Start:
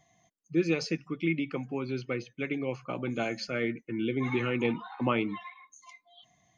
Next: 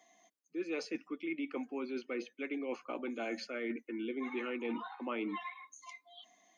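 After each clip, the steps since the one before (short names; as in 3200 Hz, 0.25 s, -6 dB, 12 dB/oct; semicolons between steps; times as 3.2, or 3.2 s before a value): steep high-pass 230 Hz 48 dB/oct; dynamic EQ 5300 Hz, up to -7 dB, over -56 dBFS, Q 1.4; reverse; compressor 6:1, threshold -37 dBFS, peak gain reduction 14.5 dB; reverse; gain +1.5 dB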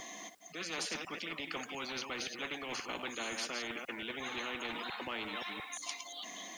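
reverse delay 0.175 s, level -13.5 dB; spectral compressor 4:1; gain +4.5 dB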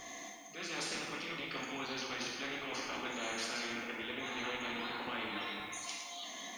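plate-style reverb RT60 1.3 s, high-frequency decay 0.75×, DRR -2.5 dB; gain -4 dB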